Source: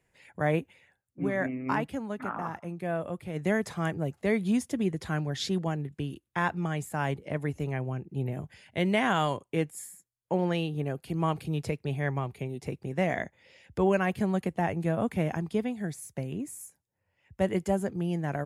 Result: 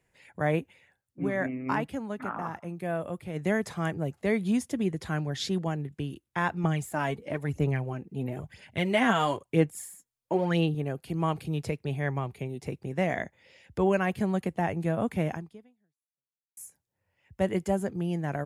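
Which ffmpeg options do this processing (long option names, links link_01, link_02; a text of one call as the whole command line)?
ffmpeg -i in.wav -filter_complex "[0:a]asettb=1/sr,asplit=3[link_01][link_02][link_03];[link_01]atrim=end=2.734[link_04];[link_02]atrim=start=2.73:end=3.19,asetpts=PTS-STARTPTS,afade=type=in:duration=0.004:curve=qsin,afade=type=out:start_time=0.456:duration=0.004:curve=qsin,highshelf=frequency=11000:gain=9[link_05];[link_03]atrim=start=3.186[link_06];[link_04][link_05]acrossfade=duration=0.004:curve1=hsin:curve2=qsin[link_07];[link_07][link_06]acrossfade=duration=0.004:curve1=qsin:curve2=hsin,asettb=1/sr,asplit=3[link_08][link_09][link_10];[link_08]atrim=end=6.644[link_11];[link_09]atrim=start=6.64:end=10.75,asetpts=PTS-STARTPTS,afade=type=in:duration=0.004:curve=qsin,afade=type=out:start_time=4.106:duration=0.004:curve=qsin,aphaser=in_gain=1:out_gain=1:delay=4.5:decay=0.51:speed=1:type=sinusoidal[link_12];[link_10]atrim=start=10.746[link_13];[link_11][link_12]acrossfade=duration=0.004:curve1=hsin:curve2=qsin[link_14];[link_14][link_13]acrossfade=duration=0.004:curve1=qsin:curve2=hsin,asplit=2[link_15][link_16];[link_15]atrim=end=16.57,asetpts=PTS-STARTPTS,afade=type=out:start_time=15.32:duration=1.25:curve=exp[link_17];[link_16]atrim=start=16.57,asetpts=PTS-STARTPTS,afade=type=in:duration=0.004:curve=hsin[link_18];[link_17][link_18]concat=n=2:v=0:a=1" out.wav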